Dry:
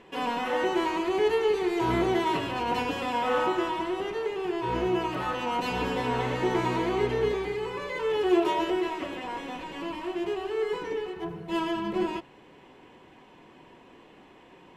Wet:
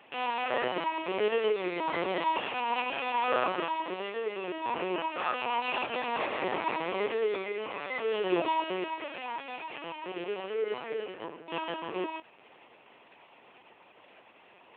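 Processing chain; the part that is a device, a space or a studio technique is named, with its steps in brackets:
talking toy (linear-prediction vocoder at 8 kHz pitch kept; high-pass filter 420 Hz 12 dB per octave; parametric band 2,500 Hz +6.5 dB 0.24 octaves)

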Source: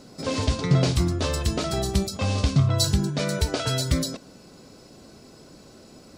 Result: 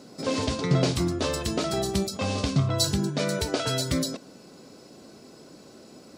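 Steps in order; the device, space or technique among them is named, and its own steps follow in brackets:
filter by subtraction (in parallel: low-pass filter 280 Hz 12 dB per octave + polarity inversion)
on the sum: level −1 dB

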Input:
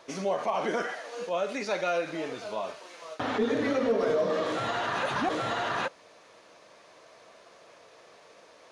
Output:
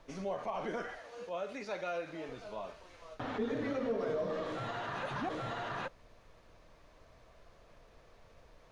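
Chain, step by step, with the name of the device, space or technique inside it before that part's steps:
car interior (parametric band 130 Hz +7.5 dB 0.99 octaves; high-shelf EQ 4,700 Hz −7 dB; brown noise bed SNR 20 dB)
0:00.99–0:02.29: high-pass filter 180 Hz 6 dB per octave
level −9 dB

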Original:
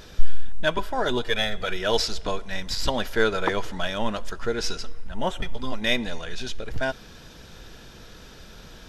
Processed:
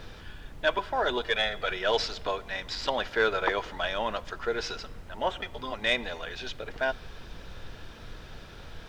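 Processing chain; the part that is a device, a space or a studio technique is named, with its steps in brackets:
aircraft cabin announcement (band-pass filter 430–3,800 Hz; soft clipping −12.5 dBFS, distortion −23 dB; brown noise bed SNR 10 dB)

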